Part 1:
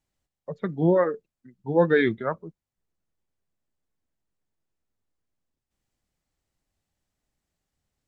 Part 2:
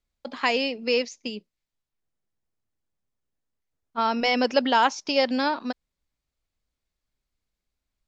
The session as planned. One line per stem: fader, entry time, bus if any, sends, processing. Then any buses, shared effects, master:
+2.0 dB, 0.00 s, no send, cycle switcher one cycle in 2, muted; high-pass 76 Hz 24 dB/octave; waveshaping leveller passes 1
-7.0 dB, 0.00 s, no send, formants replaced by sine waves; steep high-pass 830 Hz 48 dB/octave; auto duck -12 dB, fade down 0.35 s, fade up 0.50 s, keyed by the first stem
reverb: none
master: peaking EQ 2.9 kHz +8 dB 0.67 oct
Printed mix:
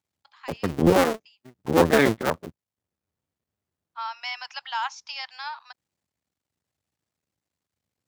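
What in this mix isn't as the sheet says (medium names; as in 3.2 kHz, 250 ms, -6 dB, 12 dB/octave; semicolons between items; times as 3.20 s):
stem 2: missing formants replaced by sine waves; master: missing peaking EQ 2.9 kHz +8 dB 0.67 oct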